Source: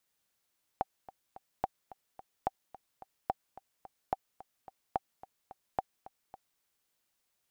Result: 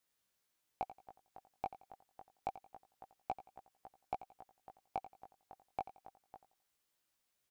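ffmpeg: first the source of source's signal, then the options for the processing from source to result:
-f lavfi -i "aevalsrc='pow(10,(-16-18.5*gte(mod(t,3*60/217),60/217))/20)*sin(2*PI*771*mod(t,60/217))*exp(-6.91*mod(t,60/217)/0.03)':duration=5.8:sample_rate=44100"
-af "asoftclip=type=tanh:threshold=-21dB,flanger=delay=15.5:depth=4.9:speed=0.27,aecho=1:1:87|174|261:0.188|0.0546|0.0158"

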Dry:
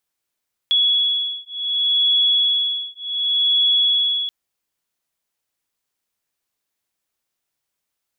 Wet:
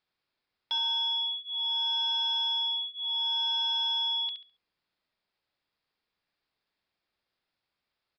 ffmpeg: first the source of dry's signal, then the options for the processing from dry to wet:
-f lavfi -i "aevalsrc='0.112*(sin(2*PI*3370*t)+sin(2*PI*3370.67*t))':duration=3.58:sample_rate=44100"
-filter_complex "[0:a]bandreject=frequency=3000:width=20,asplit=2[link_01][link_02];[link_02]adelay=69,lowpass=frequency=3100:poles=1,volume=-6.5dB,asplit=2[link_03][link_04];[link_04]adelay=69,lowpass=frequency=3100:poles=1,volume=0.35,asplit=2[link_05][link_06];[link_06]adelay=69,lowpass=frequency=3100:poles=1,volume=0.35,asplit=2[link_07][link_08];[link_08]adelay=69,lowpass=frequency=3100:poles=1,volume=0.35[link_09];[link_01][link_03][link_05][link_07][link_09]amix=inputs=5:normalize=0,aresample=11025,asoftclip=type=tanh:threshold=-28dB,aresample=44100"

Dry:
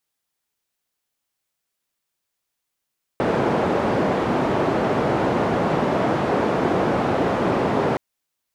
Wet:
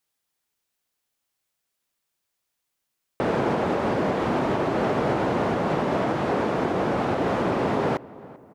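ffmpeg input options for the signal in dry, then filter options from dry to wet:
-f lavfi -i "anoisesrc=color=white:duration=4.77:sample_rate=44100:seed=1,highpass=frequency=130,lowpass=frequency=650,volume=0.1dB"
-filter_complex "[0:a]alimiter=limit=-14.5dB:level=0:latency=1:release=281,asplit=2[link_01][link_02];[link_02]adelay=390,lowpass=frequency=1600:poles=1,volume=-19.5dB,asplit=2[link_03][link_04];[link_04]adelay=390,lowpass=frequency=1600:poles=1,volume=0.48,asplit=2[link_05][link_06];[link_06]adelay=390,lowpass=frequency=1600:poles=1,volume=0.48,asplit=2[link_07][link_08];[link_08]adelay=390,lowpass=frequency=1600:poles=1,volume=0.48[link_09];[link_01][link_03][link_05][link_07][link_09]amix=inputs=5:normalize=0"

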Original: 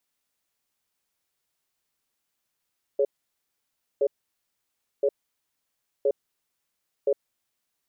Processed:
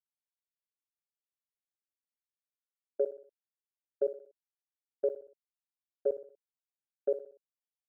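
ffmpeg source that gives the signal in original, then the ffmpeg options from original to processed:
-f lavfi -i "aevalsrc='0.0841*(sin(2*PI*418*t)+sin(2*PI*559*t))*clip(min(mod(t,1.02),0.06-mod(t,1.02))/0.005,0,1)':duration=4.55:sample_rate=44100"
-af "agate=range=-33dB:threshold=-22dB:ratio=3:detection=peak,acompressor=threshold=-25dB:ratio=6,aecho=1:1:61|122|183|244:0.224|0.0985|0.0433|0.0191"

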